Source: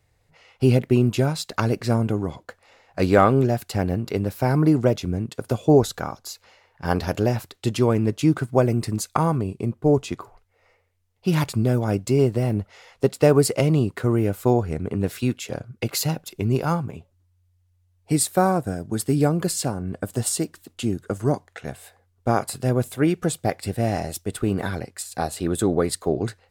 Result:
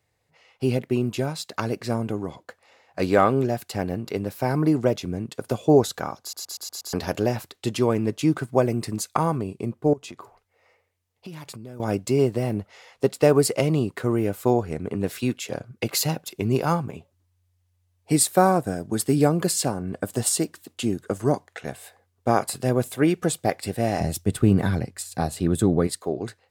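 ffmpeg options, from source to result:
-filter_complex "[0:a]asettb=1/sr,asplit=3[s0][s1][s2];[s0]atrim=end=9.934[s3];[s1]atrim=start=9.93:end=11.8,asetpts=PTS-STARTPTS,afade=t=in:d=0.004:c=qsin,afade=t=out:st=1.866:d=0.004:c=qsin,acompressor=threshold=0.0224:ratio=10:attack=3.2:release=140:knee=1:detection=peak[s4];[s2]atrim=start=11.796[s5];[s3][s4]acrossfade=d=0.004:c1=hsin:c2=qsin[s6];[s6][s5]acrossfade=d=0.004:c1=qsin:c2=hsin,asettb=1/sr,asplit=3[s7][s8][s9];[s7]atrim=end=24.004[s10];[s8]atrim=start=24:end=25.87,asetpts=PTS-STARTPTS,afade=t=in:d=0.004:c=qsin,afade=t=out:st=1.866:d=0.004:c=qsin,bass=f=250:g=13,treble=f=4000:g=0[s11];[s9]atrim=start=25.866[s12];[s10][s11]acrossfade=d=0.004:c1=hsin:c2=qsin[s13];[s13][s12]acrossfade=d=0.004:c1=qsin:c2=hsin,asplit=7[s14][s15][s16][s17][s18][s19][s20];[s14]atrim=end=6.332[s21];[s15]atrim=start=6.208:end=6.332[s22];[s16]atrim=start=6.208:end=6.332[s23];[s17]atrim=start=6.208:end=6.332[s24];[s18]atrim=start=6.208:end=6.332[s25];[s19]atrim=start=6.208:end=6.332[s26];[s20]atrim=start=6.928[s27];[s21][s22]acrossfade=d=0.004:c1=hsin:c2=hsin[s28];[s28][s23]acrossfade=d=0.004:c1=hsin:c2=hsin[s29];[s29][s24]acrossfade=d=0.004:c1=hsin:c2=hsin[s30];[s30][s25]acrossfade=d=0.004:c1=hsin:c2=hsin[s31];[s31][s26]acrossfade=d=0.004:c1=hsin:c2=hsin[s32];[s32][s27]acrossfade=d=0.004:c1=hsin:c2=hsin,highpass=f=170:p=1,bandreject=f=1400:w=21,dynaudnorm=f=300:g=13:m=3.76,volume=0.668"

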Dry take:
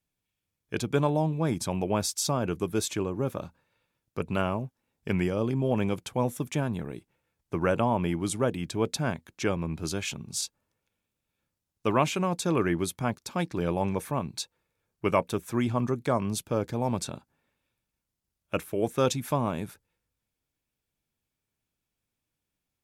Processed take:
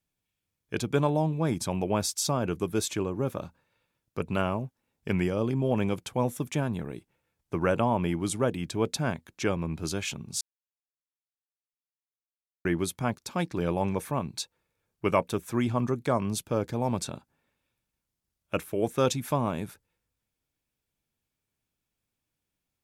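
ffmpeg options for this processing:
-filter_complex "[0:a]asplit=3[s0][s1][s2];[s0]atrim=end=10.41,asetpts=PTS-STARTPTS,afade=t=out:st=10.406:d=0.004:c=hsin[s3];[s1]atrim=start=10.41:end=12.65,asetpts=PTS-STARTPTS,volume=0[s4];[s2]atrim=start=12.65,asetpts=PTS-STARTPTS,afade=t=in:d=0.004:c=hsin[s5];[s3][s4][s5]concat=n=3:v=0:a=1"

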